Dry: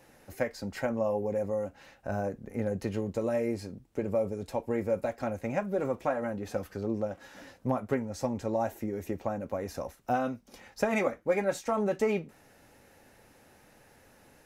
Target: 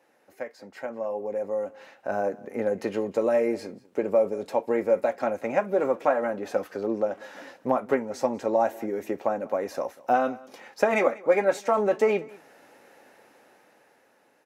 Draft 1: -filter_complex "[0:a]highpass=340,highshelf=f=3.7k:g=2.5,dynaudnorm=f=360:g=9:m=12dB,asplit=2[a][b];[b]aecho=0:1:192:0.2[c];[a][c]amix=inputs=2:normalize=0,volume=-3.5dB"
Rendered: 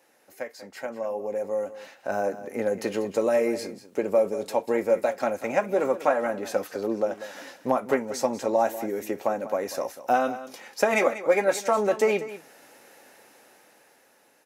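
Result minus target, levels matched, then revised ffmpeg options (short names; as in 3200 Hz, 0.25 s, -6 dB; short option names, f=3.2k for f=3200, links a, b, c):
8000 Hz band +8.5 dB; echo-to-direct +8 dB
-filter_complex "[0:a]highpass=340,highshelf=f=3.7k:g=-9,dynaudnorm=f=360:g=9:m=12dB,asplit=2[a][b];[b]aecho=0:1:192:0.0794[c];[a][c]amix=inputs=2:normalize=0,volume=-3.5dB"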